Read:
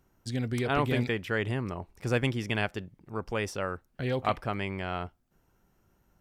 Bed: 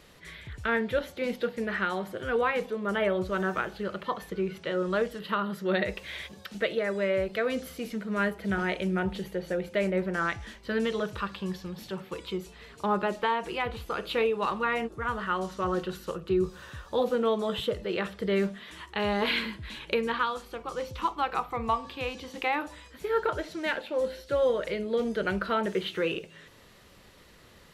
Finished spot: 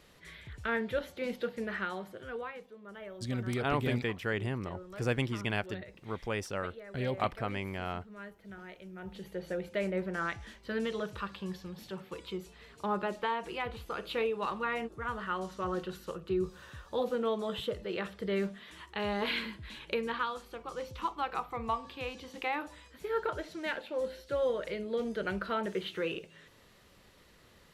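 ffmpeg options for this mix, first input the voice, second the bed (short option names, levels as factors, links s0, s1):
-filter_complex "[0:a]adelay=2950,volume=0.668[s0];[1:a]volume=2.66,afade=t=out:st=1.63:d=1:silence=0.199526,afade=t=in:st=8.96:d=0.47:silence=0.211349[s1];[s0][s1]amix=inputs=2:normalize=0"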